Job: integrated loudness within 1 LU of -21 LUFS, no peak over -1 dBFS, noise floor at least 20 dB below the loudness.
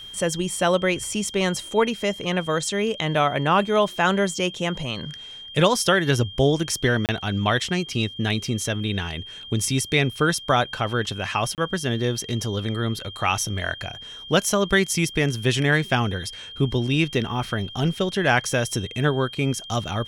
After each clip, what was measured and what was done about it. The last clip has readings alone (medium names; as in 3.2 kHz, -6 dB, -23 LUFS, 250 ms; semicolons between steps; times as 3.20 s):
dropouts 2; longest dropout 28 ms; steady tone 3.2 kHz; tone level -37 dBFS; loudness -23.0 LUFS; peak level -5.5 dBFS; loudness target -21.0 LUFS
-> interpolate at 7.06/11.55 s, 28 ms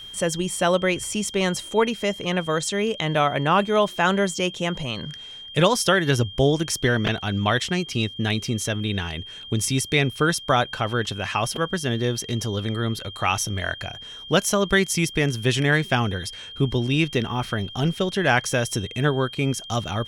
dropouts 0; steady tone 3.2 kHz; tone level -37 dBFS
-> band-stop 3.2 kHz, Q 30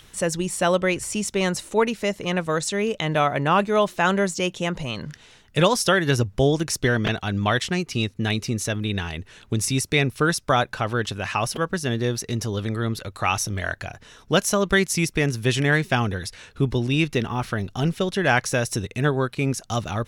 steady tone not found; loudness -23.0 LUFS; peak level -5.0 dBFS; loudness target -21.0 LUFS
-> trim +2 dB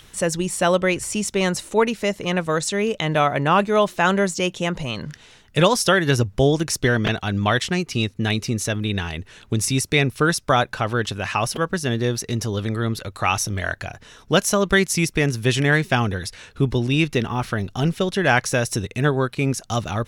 loudness -21.0 LUFS; peak level -3.0 dBFS; noise floor -51 dBFS